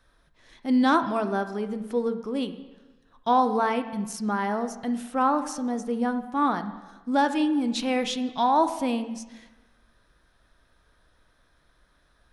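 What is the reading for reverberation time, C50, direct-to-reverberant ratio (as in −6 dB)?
1.2 s, 11.5 dB, 9.0 dB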